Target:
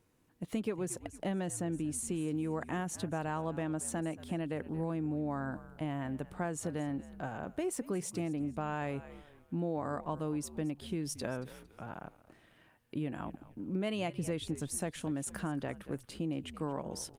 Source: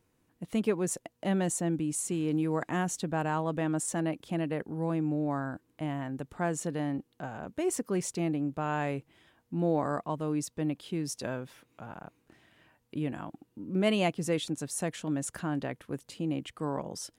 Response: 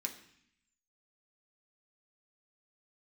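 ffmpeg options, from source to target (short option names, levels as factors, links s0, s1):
-filter_complex "[0:a]asettb=1/sr,asplit=3[s0][s1][s2];[s0]atrim=end=14.174[s3];[s1]atrim=start=14.17:end=14.73,asetpts=PTS-STARTPTS,afade=t=in:d=0.004:c=qsin,afade=t=out:st=0.556:d=0.004:c=qsin,lowshelf=f=110:g=11[s4];[s2]atrim=start=14.726[s5];[s3][s4]acrossfade=d=0.004:c1=hsin:c2=qsin[s6];[s6][s5]acrossfade=d=0.004:c1=qsin:c2=hsin,asplit=4[s7][s8][s9][s10];[s8]adelay=228,afreqshift=-79,volume=0.126[s11];[s9]adelay=456,afreqshift=-158,volume=0.0442[s12];[s10]adelay=684,afreqshift=-237,volume=0.0155[s13];[s7][s11][s12][s13]amix=inputs=4:normalize=0,acompressor=threshold=0.0251:ratio=4,asplit=3[s14][s15][s16];[s14]afade=t=out:st=0.78:d=0.02[s17];[s15]highshelf=f=11000:g=-4,afade=t=in:st=0.78:d=0.02,afade=t=out:st=2.12:d=0.02[s18];[s16]afade=t=in:st=2.12:d=0.02[s19];[s17][s18][s19]amix=inputs=3:normalize=0" -ar 48000 -c:a libopus -b:a 48k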